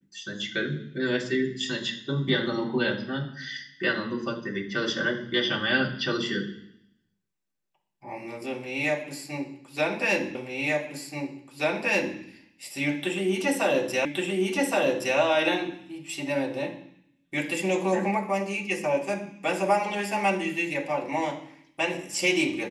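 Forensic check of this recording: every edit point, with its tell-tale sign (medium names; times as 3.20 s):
10.35 s: repeat of the last 1.83 s
14.05 s: repeat of the last 1.12 s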